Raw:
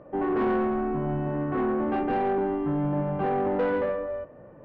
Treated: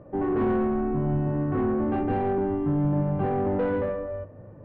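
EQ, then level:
high-frequency loss of the air 120 metres
parametric band 100 Hz +12 dB 0.3 octaves
low-shelf EQ 320 Hz +8.5 dB
−3.0 dB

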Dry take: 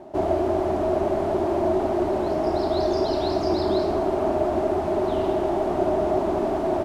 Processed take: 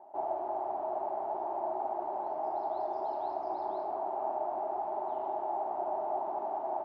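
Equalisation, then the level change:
resonant band-pass 840 Hz, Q 7
0.0 dB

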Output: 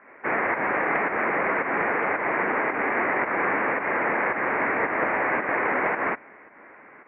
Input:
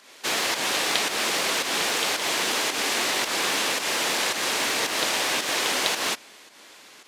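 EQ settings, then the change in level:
Butterworth low-pass 2,200 Hz 72 dB per octave
+4.5 dB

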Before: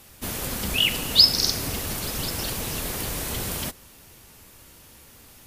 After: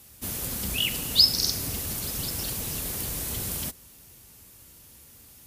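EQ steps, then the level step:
high-pass filter 41 Hz
low-shelf EQ 310 Hz +7.5 dB
high-shelf EQ 4,400 Hz +10.5 dB
−9.0 dB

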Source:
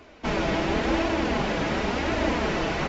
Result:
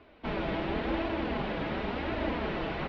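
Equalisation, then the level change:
Chebyshev low-pass filter 3,900 Hz, order 3
high-frequency loss of the air 75 metres
−6.5 dB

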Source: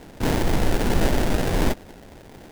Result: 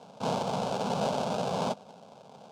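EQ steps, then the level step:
high-pass filter 170 Hz 24 dB per octave
high-frequency loss of the air 100 metres
phaser with its sweep stopped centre 780 Hz, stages 4
0.0 dB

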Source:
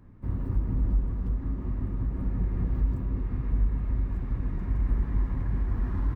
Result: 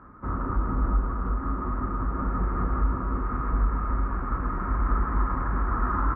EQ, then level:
high-pass filter 47 Hz
low-pass with resonance 1,300 Hz, resonance Q 9.7
parametric band 110 Hz −13 dB 1.8 octaves
+8.5 dB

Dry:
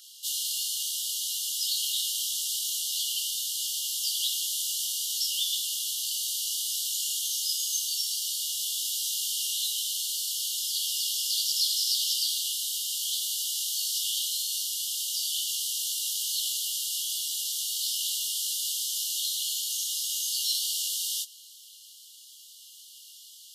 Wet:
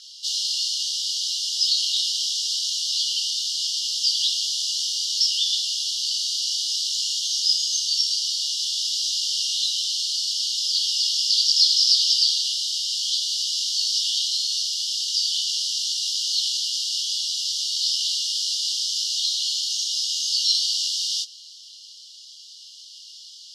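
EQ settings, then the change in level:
low-pass with resonance 5,100 Hz, resonance Q 3.2
+1.5 dB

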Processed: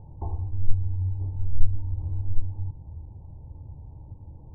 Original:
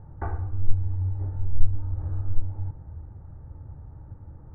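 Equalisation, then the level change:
dynamic equaliser 590 Hz, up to −7 dB, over −54 dBFS, Q 0.87
linear-phase brick-wall low-pass 1,100 Hz
0.0 dB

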